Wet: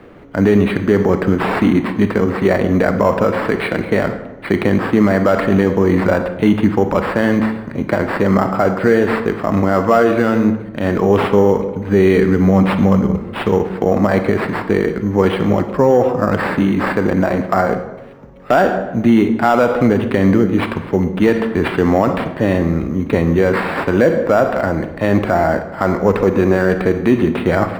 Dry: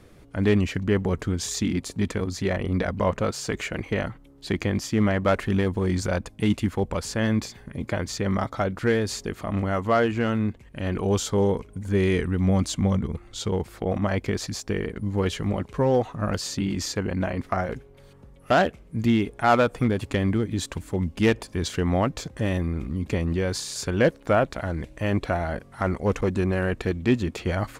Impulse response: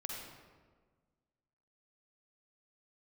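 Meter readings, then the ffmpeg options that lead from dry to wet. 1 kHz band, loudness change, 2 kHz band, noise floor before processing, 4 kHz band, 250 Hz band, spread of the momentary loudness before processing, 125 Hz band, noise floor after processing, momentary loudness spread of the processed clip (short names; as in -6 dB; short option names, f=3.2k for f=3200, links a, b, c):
+10.5 dB, +10.0 dB, +9.5 dB, -51 dBFS, +1.5 dB, +11.0 dB, 7 LU, +6.5 dB, -30 dBFS, 6 LU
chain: -filter_complex "[0:a]acrusher=samples=7:mix=1:aa=0.000001,acrossover=split=170 2600:gain=0.251 1 0.1[a][b][c];[a][b][c]amix=inputs=3:normalize=0,acontrast=85,asplit=2[d][e];[1:a]atrim=start_sample=2205,asetrate=70560,aresample=44100[f];[e][f]afir=irnorm=-1:irlink=0,volume=1dB[g];[d][g]amix=inputs=2:normalize=0,alimiter=level_in=5.5dB:limit=-1dB:release=50:level=0:latency=1,volume=-2dB"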